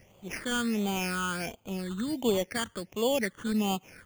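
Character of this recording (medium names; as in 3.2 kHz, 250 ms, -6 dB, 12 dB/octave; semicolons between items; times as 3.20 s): aliases and images of a low sample rate 3.9 kHz, jitter 0%; phasing stages 8, 1.4 Hz, lowest notch 690–1700 Hz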